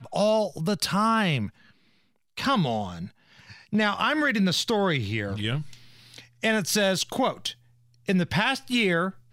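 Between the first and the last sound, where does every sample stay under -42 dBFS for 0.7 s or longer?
1.49–2.37 s

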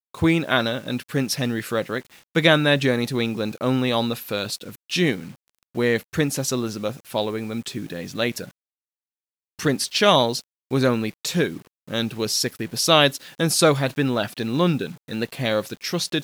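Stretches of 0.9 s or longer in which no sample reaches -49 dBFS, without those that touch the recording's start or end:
8.51–9.59 s

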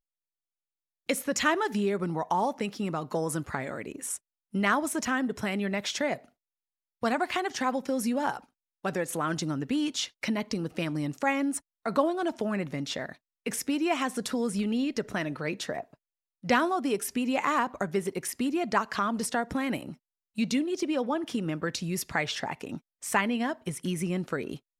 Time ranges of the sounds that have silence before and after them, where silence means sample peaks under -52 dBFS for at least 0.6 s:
1.09–6.29 s

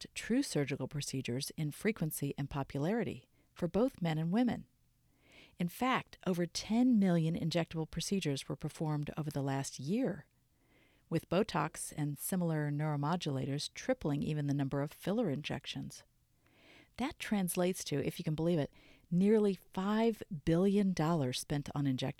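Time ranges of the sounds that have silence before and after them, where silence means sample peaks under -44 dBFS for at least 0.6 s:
5.60–10.20 s
11.11–15.98 s

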